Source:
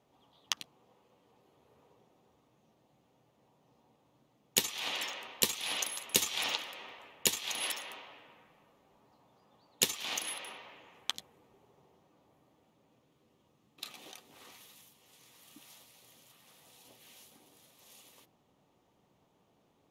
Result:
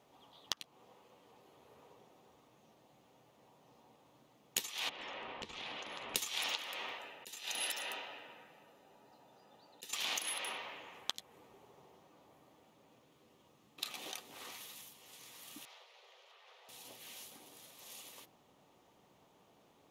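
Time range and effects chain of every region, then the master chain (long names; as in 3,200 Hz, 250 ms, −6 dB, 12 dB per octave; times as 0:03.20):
0:04.89–0:06.16: low-pass filter 4,000 Hz + spectral tilt −3 dB per octave + downward compressor 20 to 1, threshold −46 dBFS
0:06.98–0:09.93: notch comb filter 1,100 Hz + volume swells 586 ms
0:15.65–0:16.69: Butterworth high-pass 390 Hz 96 dB per octave + high-frequency loss of the air 230 metres
whole clip: low-shelf EQ 300 Hz −7 dB; downward compressor 5 to 1, threshold −41 dBFS; level +6 dB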